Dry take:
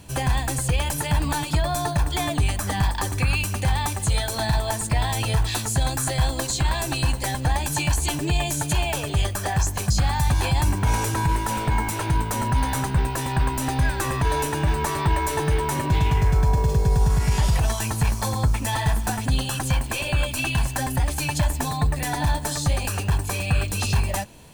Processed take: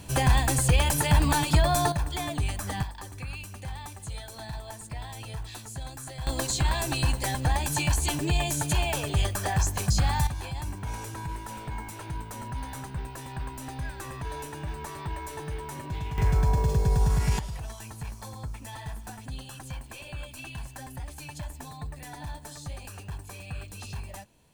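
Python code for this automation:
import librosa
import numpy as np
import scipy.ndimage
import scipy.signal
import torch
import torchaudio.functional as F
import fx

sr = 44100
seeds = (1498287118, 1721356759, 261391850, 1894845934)

y = fx.gain(x, sr, db=fx.steps((0.0, 1.0), (1.92, -7.0), (2.83, -15.5), (6.27, -3.0), (10.27, -13.5), (16.18, -4.0), (17.39, -16.0)))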